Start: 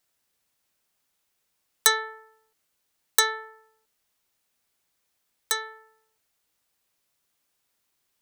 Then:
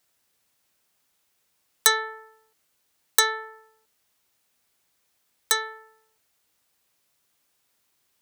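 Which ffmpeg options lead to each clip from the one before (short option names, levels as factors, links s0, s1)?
-filter_complex "[0:a]highpass=42,asplit=2[s0][s1];[s1]alimiter=limit=0.316:level=0:latency=1:release=381,volume=1.33[s2];[s0][s2]amix=inputs=2:normalize=0,volume=0.708"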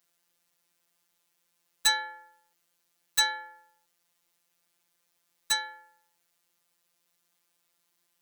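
-af "afftfilt=real='hypot(re,im)*cos(PI*b)':imag='0':win_size=1024:overlap=0.75,volume=3.76,asoftclip=hard,volume=0.266"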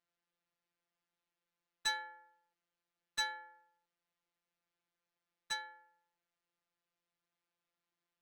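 -af "adynamicsmooth=sensitivity=1:basefreq=3500,volume=0.355"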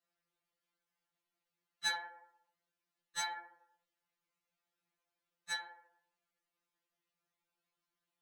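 -af "afftfilt=real='hypot(re,im)*cos(2*PI*random(0))':imag='hypot(re,im)*sin(2*PI*random(1))':win_size=512:overlap=0.75,afftfilt=real='re*2.83*eq(mod(b,8),0)':imag='im*2.83*eq(mod(b,8),0)':win_size=2048:overlap=0.75,volume=2.37"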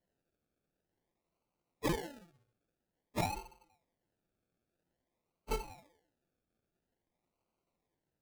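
-af "acrusher=samples=35:mix=1:aa=0.000001:lfo=1:lforange=21:lforate=0.5,volume=1.5"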